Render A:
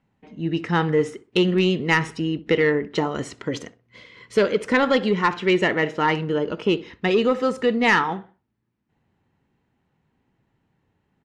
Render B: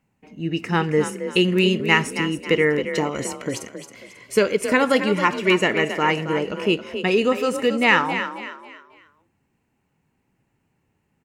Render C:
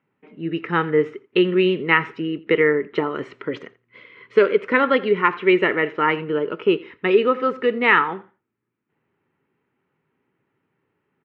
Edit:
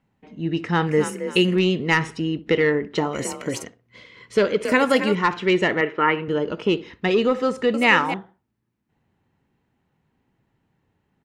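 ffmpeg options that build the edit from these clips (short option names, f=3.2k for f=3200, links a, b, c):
-filter_complex "[1:a]asplit=4[a][b][c][d];[0:a]asplit=6[e][f][g][h][i][j];[e]atrim=end=0.872[k];[a]atrim=start=0.868:end=1.562[l];[f]atrim=start=1.558:end=3.132[m];[b]atrim=start=3.128:end=3.642[n];[g]atrim=start=3.638:end=4.652[o];[c]atrim=start=4.648:end=5.152[p];[h]atrim=start=5.148:end=5.812[q];[2:a]atrim=start=5.808:end=6.282[r];[i]atrim=start=6.278:end=7.742[s];[d]atrim=start=7.738:end=8.142[t];[j]atrim=start=8.138[u];[k][l]acrossfade=d=0.004:c1=hsin:c2=hsin[v];[v][m]acrossfade=d=0.004:c1=hsin:c2=hsin[w];[w][n]acrossfade=d=0.004:c1=hsin:c2=hsin[x];[x][o]acrossfade=d=0.004:c1=hsin:c2=hsin[y];[y][p]acrossfade=d=0.004:c1=hsin:c2=hsin[z];[z][q]acrossfade=d=0.004:c1=hsin:c2=hsin[aa];[aa][r]acrossfade=d=0.004:c1=hsin:c2=hsin[ab];[ab][s]acrossfade=d=0.004:c1=hsin:c2=hsin[ac];[ac][t]acrossfade=d=0.004:c1=hsin:c2=hsin[ad];[ad][u]acrossfade=d=0.004:c1=hsin:c2=hsin"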